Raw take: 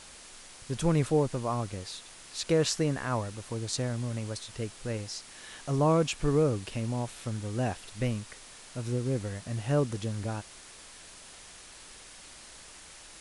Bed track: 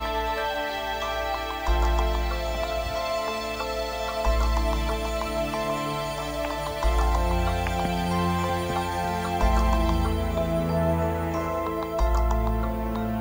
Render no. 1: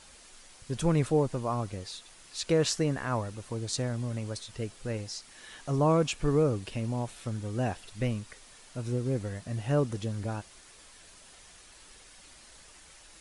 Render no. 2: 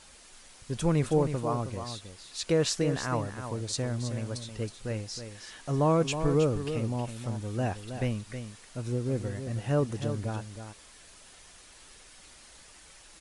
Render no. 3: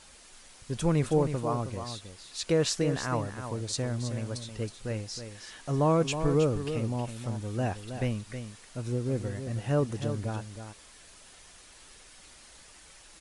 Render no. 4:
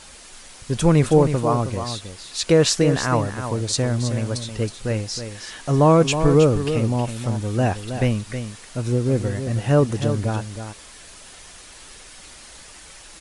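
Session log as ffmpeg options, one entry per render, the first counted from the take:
-af "afftdn=nr=6:nf=-50"
-af "aecho=1:1:318:0.355"
-af anull
-af "volume=10dB"

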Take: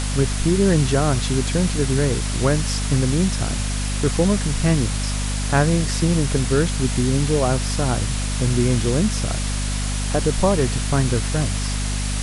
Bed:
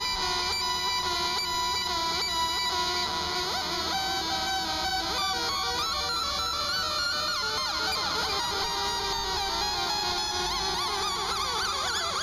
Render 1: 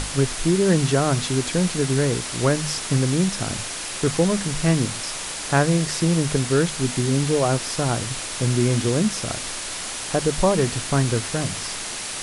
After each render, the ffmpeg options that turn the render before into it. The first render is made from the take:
-af "bandreject=f=50:t=h:w=6,bandreject=f=100:t=h:w=6,bandreject=f=150:t=h:w=6,bandreject=f=200:t=h:w=6,bandreject=f=250:t=h:w=6"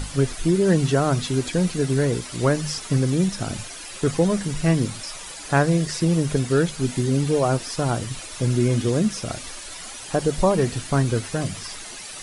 -af "afftdn=nr=11:nf=-31"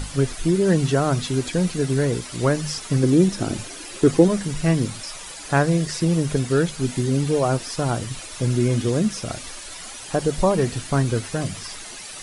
-filter_complex "[0:a]asettb=1/sr,asplit=3[a][b][c];[a]atrim=end=3.034[d];[b]atrim=start=3.03:end=4.28,asetpts=PTS-STARTPTS,afade=t=in:d=0.004:c=qsin,afade=t=out:st=1.246:d=0.004:c=qsin,equalizer=f=330:w=1.5:g=10[e];[c]atrim=start=4.276[f];[d][e]acrossfade=d=0.004:c1=hsin:c2=qsin[g];[g][f]acrossfade=d=0.004:c1=qsin:c2=hsin"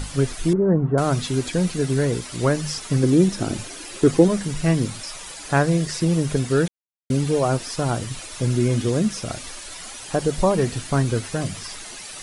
-filter_complex "[0:a]asettb=1/sr,asplit=3[a][b][c];[a]atrim=end=0.534[d];[b]atrim=start=0.53:end=0.98,asetpts=PTS-STARTPTS,afade=t=in:d=0.004:c=qsin,afade=t=out:st=0.446:d=0.004:c=qsin,lowpass=f=1.2k:w=0.5412,lowpass=f=1.2k:w=1.3066[e];[c]atrim=start=0.976[f];[d][e]acrossfade=d=0.004:c1=hsin:c2=qsin[g];[g][f]acrossfade=d=0.004:c1=qsin:c2=hsin,asplit=3[h][i][j];[h]atrim=end=6.68,asetpts=PTS-STARTPTS,afade=t=out:st=6.676:d=0.004:c=hsin[k];[i]atrim=start=6.68:end=7.1,asetpts=PTS-STARTPTS,volume=0[l];[j]atrim=start=7.1,asetpts=PTS-STARTPTS,afade=t=in:d=0.004:c=hsin[m];[k][l][m]concat=n=3:v=0:a=1"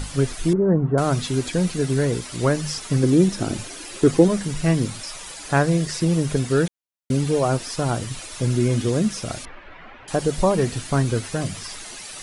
-filter_complex "[0:a]asettb=1/sr,asplit=3[a][b][c];[a]atrim=end=9.454[d];[b]atrim=start=9.45:end=10.08,asetpts=PTS-STARTPTS,afade=t=in:d=0.004:c=qsin,afade=t=out:st=0.626:d=0.004:c=qsin,lowpass=f=2.3k:w=0.5412,lowpass=f=2.3k:w=1.3066[e];[c]atrim=start=10.076[f];[d][e]acrossfade=d=0.004:c1=hsin:c2=qsin[g];[g][f]acrossfade=d=0.004:c1=qsin:c2=hsin"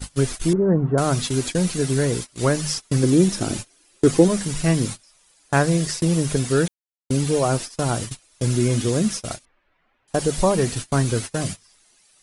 -af "agate=range=-25dB:threshold=-28dB:ratio=16:detection=peak,highshelf=f=4.9k:g=7"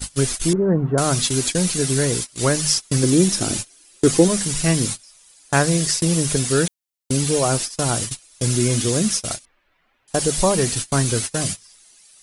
-af "highshelf=f=2.9k:g=9"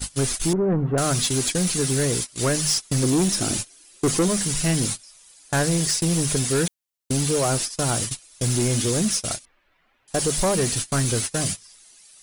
-af "asoftclip=type=tanh:threshold=-15.5dB"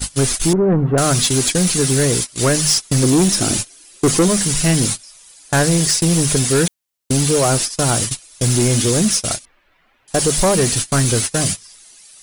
-af "volume=6.5dB"

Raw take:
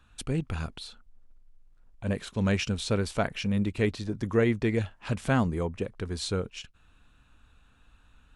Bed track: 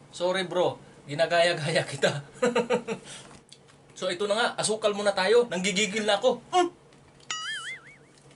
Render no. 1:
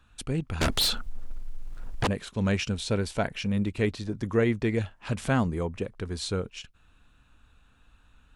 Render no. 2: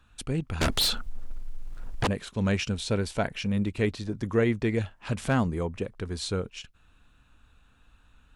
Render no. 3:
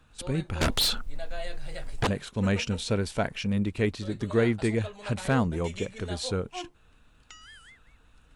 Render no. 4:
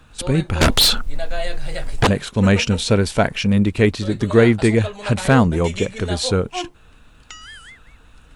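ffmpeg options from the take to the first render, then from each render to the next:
-filter_complex "[0:a]asettb=1/sr,asplit=3[a][b][c];[a]atrim=end=0.614[d];[b]atrim=start=0.61:end=2.07,asetpts=PTS-STARTPTS,afade=t=in:d=0.004:c=qsin,afade=t=out:st=1.456:d=0.004:c=qsin,aeval=exprs='0.1*sin(PI/2*7.94*val(0)/0.1)':c=same[e];[c]atrim=start=2.066[f];[d][e]acrossfade=d=0.004:c1=hsin:c2=qsin[g];[g][f]acrossfade=d=0.004:c1=qsin:c2=hsin,asettb=1/sr,asplit=3[h][i][j];[h]atrim=end=2.754[k];[i]atrim=start=2.75:end=3.33,asetpts=PTS-STARTPTS,afade=t=in:d=0.004:c=qsin,afade=t=out:st=0.576:d=0.004:c=qsin,bandreject=f=1.2k:w=7.7[l];[j]atrim=start=3.326[m];[k][l]acrossfade=d=0.004:c1=hsin:c2=qsin[n];[n][m]acrossfade=d=0.004:c1=qsin:c2=hsin,asettb=1/sr,asplit=3[o][p][q];[o]atrim=end=5.184[r];[p]atrim=start=5.18:end=5.79,asetpts=PTS-STARTPTS,afade=t=in:d=0.004:c=qsin,afade=t=out:st=0.606:d=0.004:c=qsin,acompressor=mode=upward:threshold=-33dB:ratio=2.5:attack=3.2:release=140:knee=2.83:detection=peak[s];[q]atrim=start=5.786[t];[r][s]acrossfade=d=0.004:c1=hsin:c2=qsin[u];[u][t]acrossfade=d=0.004:c1=qsin:c2=hsin"
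-af "asoftclip=type=hard:threshold=-13.5dB"
-filter_complex "[1:a]volume=-16.5dB[a];[0:a][a]amix=inputs=2:normalize=0"
-af "volume=11dB"

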